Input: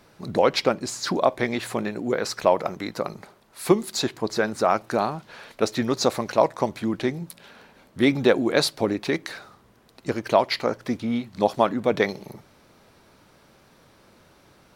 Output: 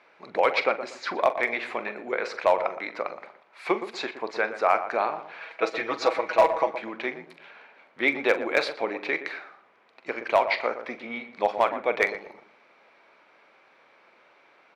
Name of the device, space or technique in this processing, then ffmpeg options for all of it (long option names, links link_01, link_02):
megaphone: -filter_complex "[0:a]asettb=1/sr,asplit=3[link_01][link_02][link_03];[link_01]atrim=end=5.404[link_04];[link_02]atrim=start=5.4:end=6.7,asetpts=PTS-STARTPTS,afade=type=in:duration=0.004:curve=qsin,afade=type=out:start_time=1.296:duration=0.004:curve=qsin,aecho=1:1:6.2:0.85,atrim=end_sample=57330[link_05];[link_03]atrim=start=6.696[link_06];[link_04][link_05]acrossfade=duration=0.004:curve1=hsin:curve2=qsin[link_07];[link_07][link_06]acrossfade=duration=0.004:curve1=qsin:curve2=hsin,highpass=570,lowpass=2600,equalizer=frequency=2300:width_type=o:width=0.35:gain=9,asoftclip=type=hard:threshold=-10.5dB,asplit=2[link_08][link_09];[link_09]adelay=43,volume=-13dB[link_10];[link_08][link_10]amix=inputs=2:normalize=0,asplit=2[link_11][link_12];[link_12]adelay=119,lowpass=frequency=1200:poles=1,volume=-9.5dB,asplit=2[link_13][link_14];[link_14]adelay=119,lowpass=frequency=1200:poles=1,volume=0.31,asplit=2[link_15][link_16];[link_16]adelay=119,lowpass=frequency=1200:poles=1,volume=0.31[link_17];[link_11][link_13][link_15][link_17]amix=inputs=4:normalize=0"